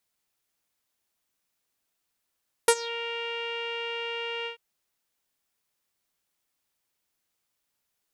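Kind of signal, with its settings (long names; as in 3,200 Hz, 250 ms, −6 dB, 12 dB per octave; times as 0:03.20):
subtractive voice saw A#4 12 dB per octave, low-pass 2,800 Hz, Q 6.1, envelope 2 octaves, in 0.22 s, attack 3.6 ms, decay 0.06 s, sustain −20.5 dB, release 0.11 s, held 1.78 s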